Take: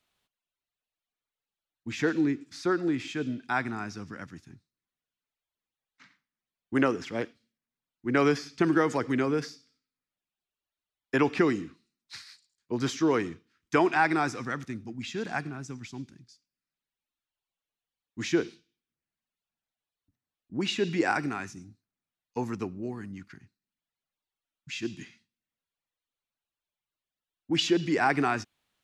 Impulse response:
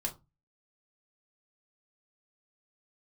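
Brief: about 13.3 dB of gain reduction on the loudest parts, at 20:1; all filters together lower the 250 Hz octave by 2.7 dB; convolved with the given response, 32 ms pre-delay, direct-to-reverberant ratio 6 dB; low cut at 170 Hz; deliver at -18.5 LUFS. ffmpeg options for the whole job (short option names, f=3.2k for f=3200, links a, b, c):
-filter_complex "[0:a]highpass=170,equalizer=f=250:t=o:g=-3,acompressor=threshold=-33dB:ratio=20,asplit=2[a][b];[1:a]atrim=start_sample=2205,adelay=32[c];[b][c]afir=irnorm=-1:irlink=0,volume=-8dB[d];[a][d]amix=inputs=2:normalize=0,volume=20.5dB"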